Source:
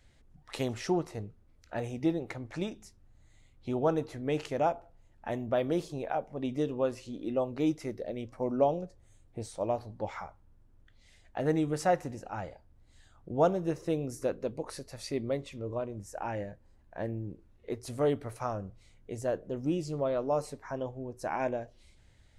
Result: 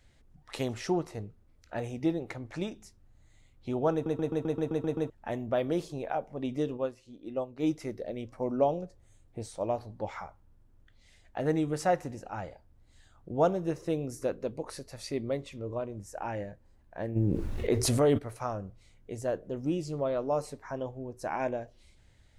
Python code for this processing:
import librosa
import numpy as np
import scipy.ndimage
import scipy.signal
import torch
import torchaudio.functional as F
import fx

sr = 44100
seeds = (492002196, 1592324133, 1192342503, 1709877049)

y = fx.upward_expand(x, sr, threshold_db=-45.0, expansion=1.5, at=(6.76, 7.62), fade=0.02)
y = fx.env_flatten(y, sr, amount_pct=70, at=(17.15, 18.17), fade=0.02)
y = fx.edit(y, sr, fx.stutter_over(start_s=3.93, slice_s=0.13, count=9), tone=tone)